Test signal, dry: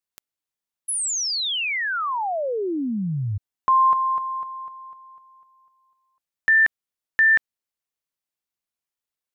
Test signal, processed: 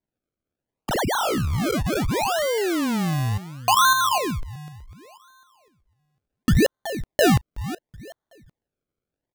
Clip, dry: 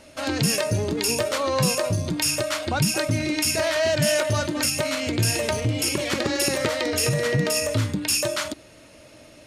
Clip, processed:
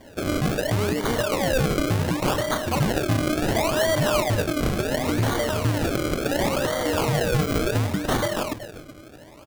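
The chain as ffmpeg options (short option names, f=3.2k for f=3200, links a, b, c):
-filter_complex "[0:a]asplit=2[a][b];[b]adelay=374,lowpass=f=4.5k:p=1,volume=-14dB,asplit=2[c][d];[d]adelay=374,lowpass=f=4.5k:p=1,volume=0.29,asplit=2[e][f];[f]adelay=374,lowpass=f=4.5k:p=1,volume=0.29[g];[a][c][e][g]amix=inputs=4:normalize=0,alimiter=limit=-14.5dB:level=0:latency=1:release=105,acrusher=samples=33:mix=1:aa=0.000001:lfo=1:lforange=33:lforate=0.7,volume=2dB"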